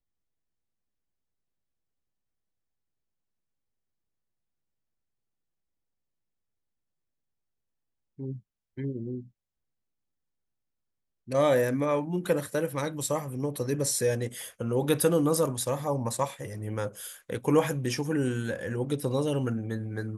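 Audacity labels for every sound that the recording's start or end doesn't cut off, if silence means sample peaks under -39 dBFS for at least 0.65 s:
8.190000	9.220000	sound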